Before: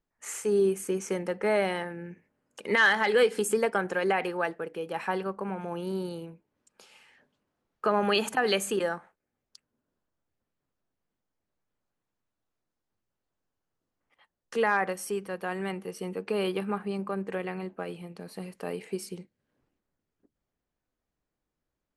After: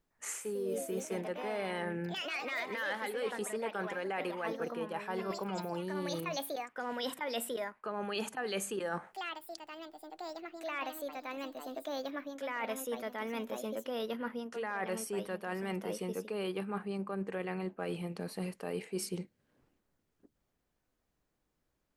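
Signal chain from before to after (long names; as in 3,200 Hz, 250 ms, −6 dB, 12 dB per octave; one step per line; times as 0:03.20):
delay with pitch and tempo change per echo 170 ms, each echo +3 semitones, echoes 3, each echo −6 dB
reversed playback
downward compressor 16 to 1, threshold −37 dBFS, peak gain reduction 21 dB
reversed playback
level +4 dB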